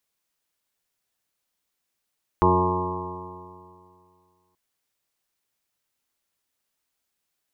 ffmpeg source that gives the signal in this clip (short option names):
-f lavfi -i "aevalsrc='0.075*pow(10,-3*t/2.3)*sin(2*PI*89.37*t)+0.0668*pow(10,-3*t/2.3)*sin(2*PI*179.13*t)+0.0299*pow(10,-3*t/2.3)*sin(2*PI*269.7*t)+0.106*pow(10,-3*t/2.3)*sin(2*PI*361.46*t)+0.0531*pow(10,-3*t/2.3)*sin(2*PI*454.79*t)+0.0133*pow(10,-3*t/2.3)*sin(2*PI*550.08*t)+0.0299*pow(10,-3*t/2.3)*sin(2*PI*647.67*t)+0.00841*pow(10,-3*t/2.3)*sin(2*PI*747.91*t)+0.0794*pow(10,-3*t/2.3)*sin(2*PI*851.13*t)+0.075*pow(10,-3*t/2.3)*sin(2*PI*957.64*t)+0.0944*pow(10,-3*t/2.3)*sin(2*PI*1067.73*t)+0.0188*pow(10,-3*t/2.3)*sin(2*PI*1181.68*t)':d=2.13:s=44100"